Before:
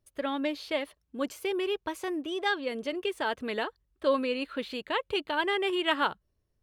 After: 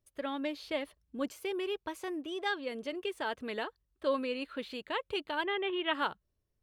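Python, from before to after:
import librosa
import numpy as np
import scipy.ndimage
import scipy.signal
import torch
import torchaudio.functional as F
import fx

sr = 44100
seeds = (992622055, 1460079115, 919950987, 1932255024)

y = fx.low_shelf(x, sr, hz=200.0, db=8.0, at=(0.63, 1.28))
y = fx.steep_lowpass(y, sr, hz=3900.0, slope=72, at=(5.43, 5.93), fade=0.02)
y = F.gain(torch.from_numpy(y), -5.0).numpy()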